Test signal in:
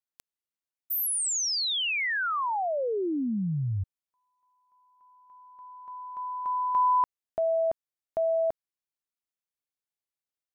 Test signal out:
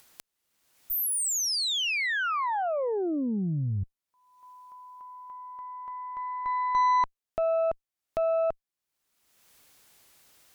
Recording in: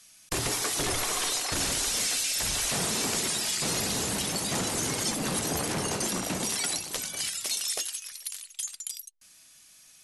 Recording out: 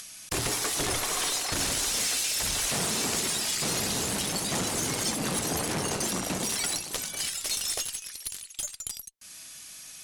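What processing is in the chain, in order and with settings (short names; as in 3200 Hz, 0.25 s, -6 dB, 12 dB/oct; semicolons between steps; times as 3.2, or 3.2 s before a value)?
added harmonics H 2 -15 dB, 6 -27 dB, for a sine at -17.5 dBFS; upward compressor, threshold -34 dBFS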